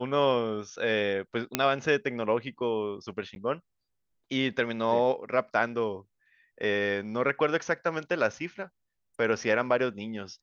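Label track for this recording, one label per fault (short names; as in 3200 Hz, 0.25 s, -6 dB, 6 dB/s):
1.550000	1.550000	pop -7 dBFS
3.350000	3.360000	gap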